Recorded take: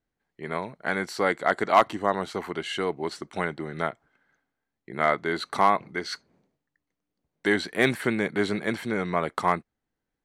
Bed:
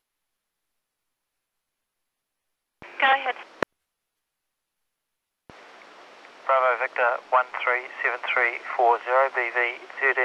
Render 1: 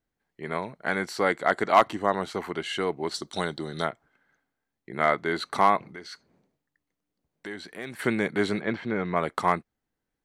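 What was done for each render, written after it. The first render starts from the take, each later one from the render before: 3.14–3.85 resonant high shelf 3000 Hz +7.5 dB, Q 3; 5.92–7.99 compressor 2:1, threshold -45 dBFS; 8.61–9.16 air absorption 210 m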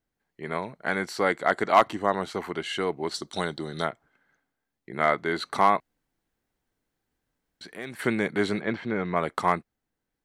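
5.8–7.61 room tone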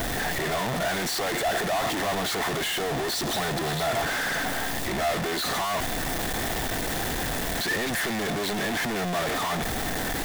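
infinite clipping; small resonant body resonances 700/1800/3500 Hz, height 8 dB, ringing for 20 ms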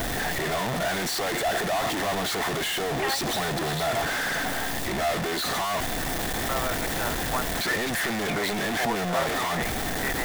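add bed -11 dB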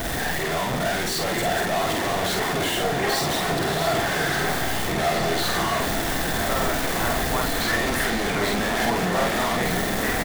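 doubler 49 ms -2 dB; repeats that get brighter 0.683 s, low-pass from 400 Hz, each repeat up 2 oct, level -3 dB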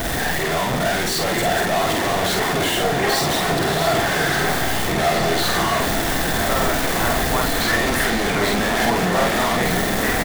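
gain +4 dB

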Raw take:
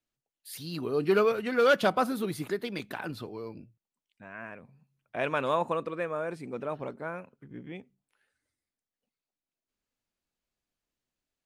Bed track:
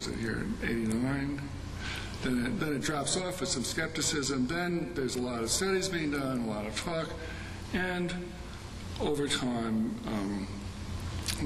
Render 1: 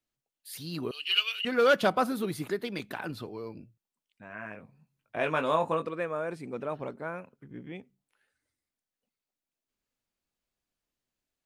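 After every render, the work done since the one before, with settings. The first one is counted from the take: 0.91–1.45 resonant high-pass 2900 Hz, resonance Q 15; 4.28–5.89 doubler 19 ms -6 dB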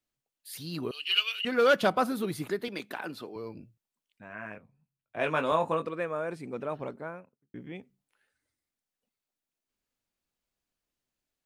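2.68–3.36 HPF 240 Hz; 4.58–5.52 three-band expander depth 40%; 6.88–7.54 studio fade out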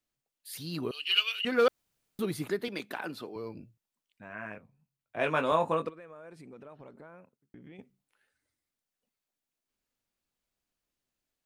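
1.68–2.19 room tone; 5.89–7.79 compressor 5:1, threshold -47 dBFS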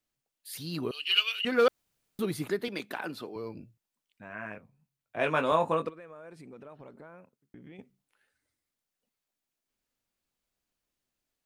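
gain +1 dB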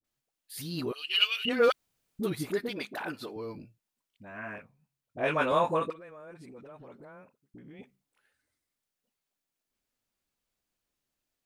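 dispersion highs, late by 44 ms, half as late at 610 Hz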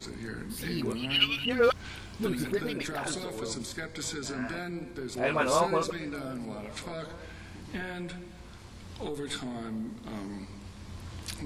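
add bed track -5.5 dB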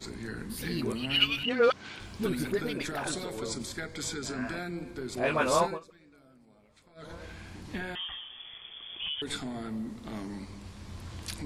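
1.43–2 BPF 180–6700 Hz; 5.62–7.13 dip -22 dB, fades 0.18 s; 7.95–9.22 inverted band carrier 3400 Hz

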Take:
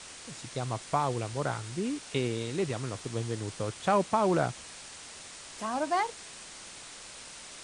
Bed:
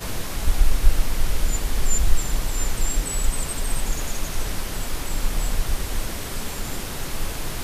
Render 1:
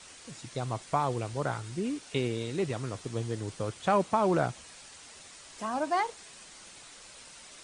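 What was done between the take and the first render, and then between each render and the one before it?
denoiser 6 dB, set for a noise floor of -47 dBFS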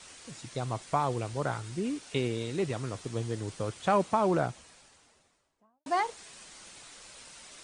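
4.06–5.86 studio fade out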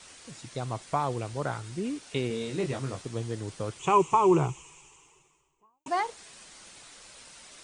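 2.28–3.02 doubler 22 ms -4.5 dB; 3.79–5.88 ripple EQ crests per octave 0.71, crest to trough 17 dB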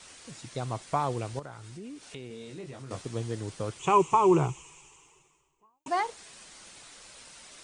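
1.39–2.91 compressor 2.5:1, threshold -44 dBFS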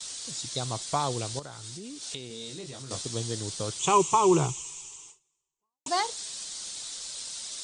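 gate with hold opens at -46 dBFS; band shelf 5500 Hz +14 dB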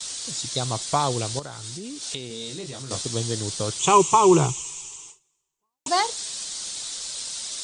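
gain +5.5 dB

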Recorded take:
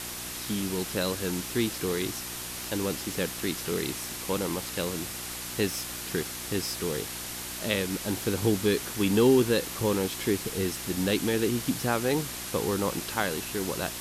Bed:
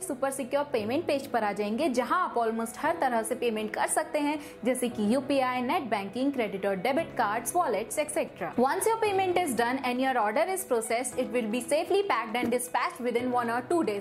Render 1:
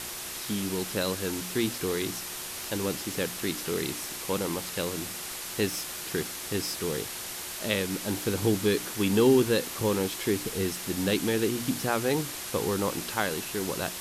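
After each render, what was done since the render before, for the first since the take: de-hum 60 Hz, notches 5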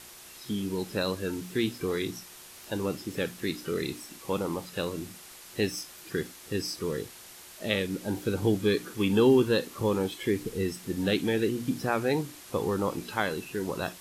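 noise print and reduce 11 dB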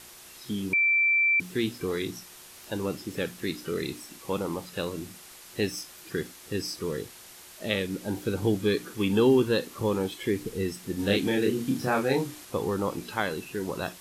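0.73–1.4 bleep 2340 Hz -19.5 dBFS; 10.96–12.45 doubler 30 ms -2 dB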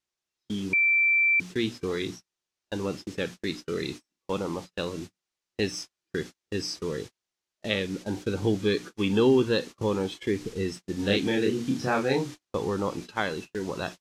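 EQ curve 1200 Hz 0 dB, 6200 Hz +2 dB, 13000 Hz -14 dB; gate -37 dBFS, range -39 dB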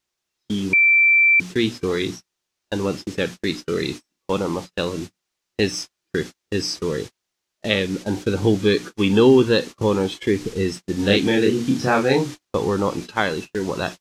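gain +7.5 dB

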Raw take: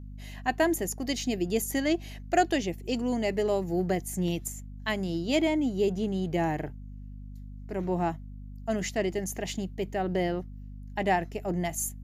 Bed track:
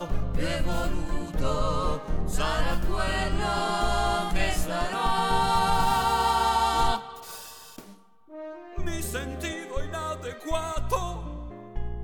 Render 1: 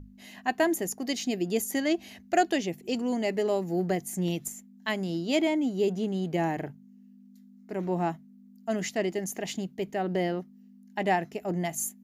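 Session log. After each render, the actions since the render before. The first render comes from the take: notches 50/100/150 Hz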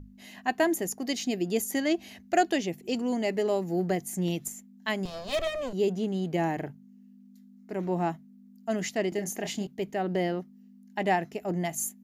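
5.05–5.73 minimum comb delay 1.6 ms; 9.09–9.67 doubler 29 ms -6.5 dB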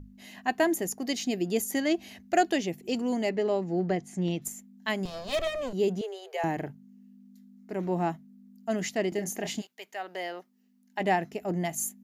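3.29–4.42 air absorption 99 m; 6.01–6.44 Chebyshev high-pass 390 Hz, order 10; 9.6–10.99 HPF 1300 Hz -> 360 Hz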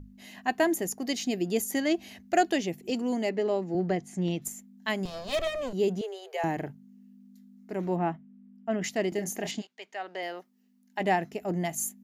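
2.9–3.75 Chebyshev high-pass 210 Hz; 7.96–8.84 polynomial smoothing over 25 samples; 9.51–10.23 BPF 140–5900 Hz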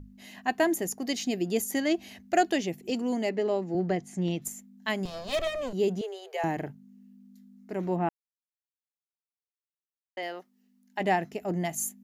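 8.09–10.17 mute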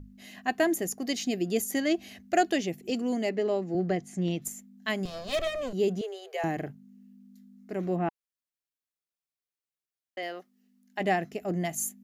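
notch 910 Hz, Q 5.3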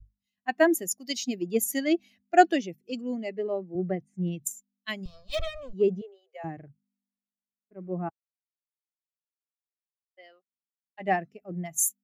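per-bin expansion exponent 1.5; three-band expander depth 100%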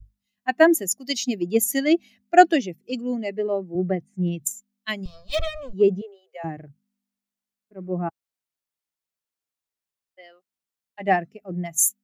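gain +5.5 dB; limiter -1 dBFS, peak gain reduction 1.5 dB

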